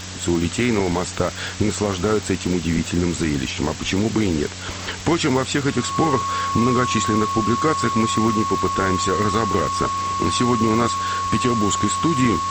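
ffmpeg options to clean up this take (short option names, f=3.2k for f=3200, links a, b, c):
-af "adeclick=t=4,bandreject=f=92.2:t=h:w=4,bandreject=f=184.4:t=h:w=4,bandreject=f=276.6:t=h:w=4,bandreject=f=1.1k:w=30,afwtdn=0.028"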